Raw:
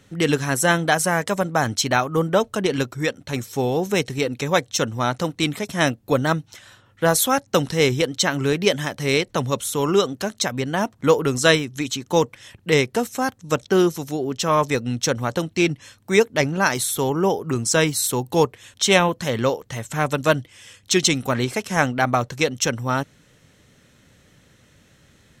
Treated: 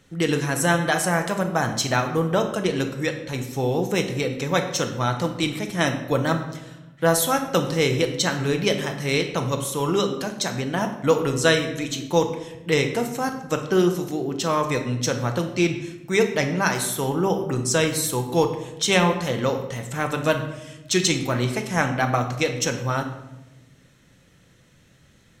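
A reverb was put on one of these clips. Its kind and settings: shoebox room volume 400 m³, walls mixed, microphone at 0.72 m; gain -3.5 dB

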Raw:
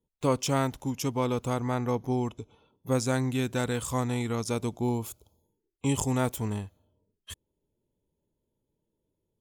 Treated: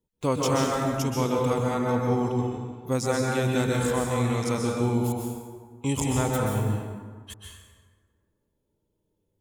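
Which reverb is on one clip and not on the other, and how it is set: plate-style reverb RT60 1.6 s, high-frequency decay 0.55×, pre-delay 0.115 s, DRR -2 dB

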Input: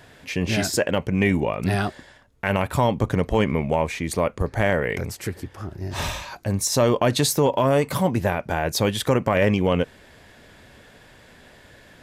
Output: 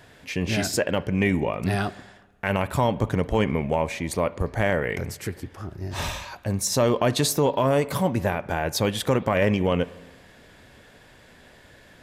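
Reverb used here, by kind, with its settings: spring tank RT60 1.3 s, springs 46/53 ms, chirp 30 ms, DRR 18 dB; gain -2 dB

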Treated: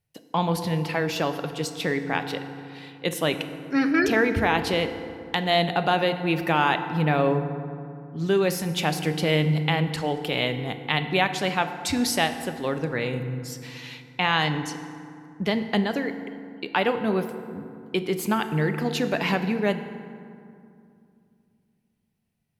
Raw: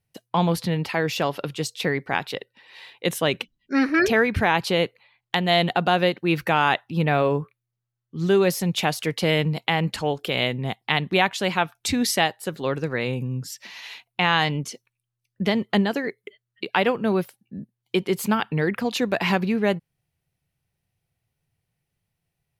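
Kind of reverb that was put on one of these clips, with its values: FDN reverb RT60 2.5 s, low-frequency decay 1.35×, high-frequency decay 0.5×, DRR 8 dB; gain -2.5 dB

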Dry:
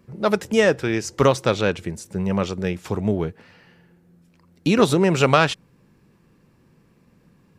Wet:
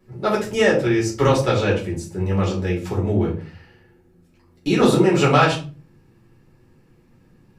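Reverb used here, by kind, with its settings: shoebox room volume 200 m³, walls furnished, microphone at 4.1 m; gain -7 dB

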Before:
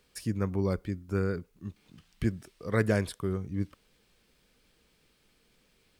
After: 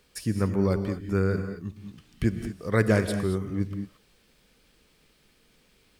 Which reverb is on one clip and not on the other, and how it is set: non-linear reverb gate 0.25 s rising, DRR 7.5 dB; gain +4 dB

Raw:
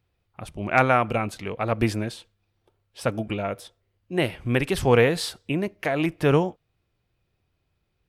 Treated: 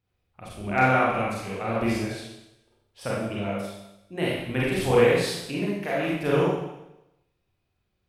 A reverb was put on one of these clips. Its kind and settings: Schroeder reverb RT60 0.89 s, combs from 31 ms, DRR -6.5 dB; gain -8.5 dB

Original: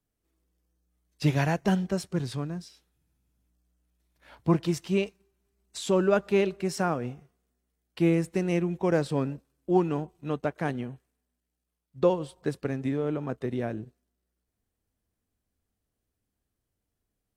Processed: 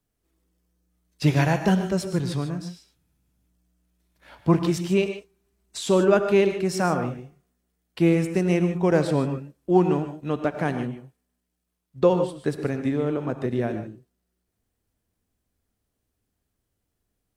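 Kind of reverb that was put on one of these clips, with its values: non-linear reverb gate 0.17 s rising, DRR 8 dB; gain +4 dB

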